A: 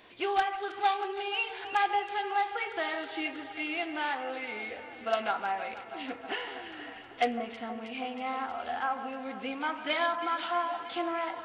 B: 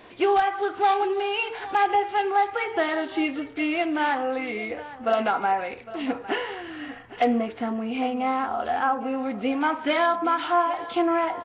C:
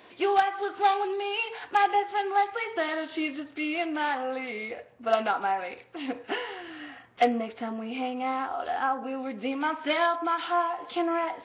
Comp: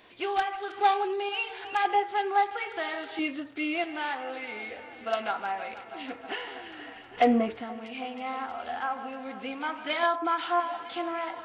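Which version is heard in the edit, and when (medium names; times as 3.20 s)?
A
0.81–1.29 s: from C
1.85–2.51 s: from C
3.19–3.84 s: from C
7.14–7.59 s: from B, crossfade 0.10 s
10.03–10.60 s: from C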